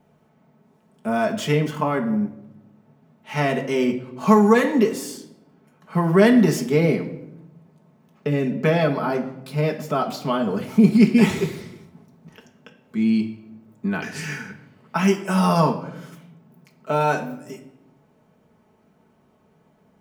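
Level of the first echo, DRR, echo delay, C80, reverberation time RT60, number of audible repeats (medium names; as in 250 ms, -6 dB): no echo, 0.5 dB, no echo, 14.0 dB, 0.85 s, no echo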